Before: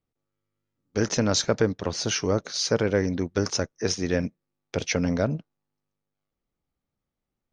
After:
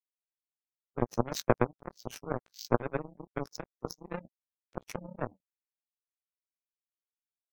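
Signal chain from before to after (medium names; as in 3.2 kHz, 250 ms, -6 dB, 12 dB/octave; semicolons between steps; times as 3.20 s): short-time spectra conjugated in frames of 34 ms; spectral gate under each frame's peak -15 dB strong; power-law waveshaper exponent 3; trim +8 dB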